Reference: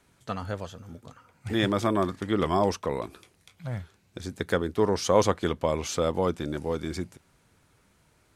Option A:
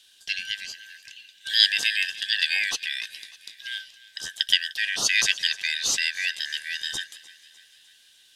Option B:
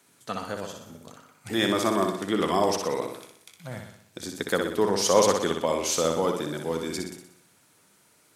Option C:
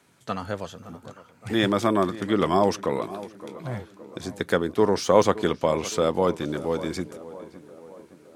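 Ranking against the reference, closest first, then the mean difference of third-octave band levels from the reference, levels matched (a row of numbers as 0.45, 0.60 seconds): C, B, A; 2.0, 6.5, 20.0 decibels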